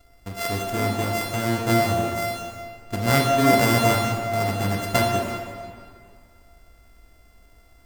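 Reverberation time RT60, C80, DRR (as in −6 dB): 2.2 s, 3.5 dB, −0.5 dB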